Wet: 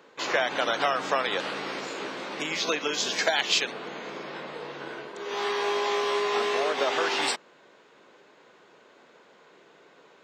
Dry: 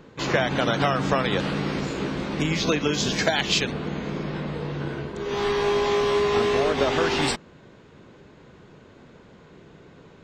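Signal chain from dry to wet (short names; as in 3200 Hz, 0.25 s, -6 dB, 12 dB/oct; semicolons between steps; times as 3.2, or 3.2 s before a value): HPF 510 Hz 12 dB/oct; gain -1 dB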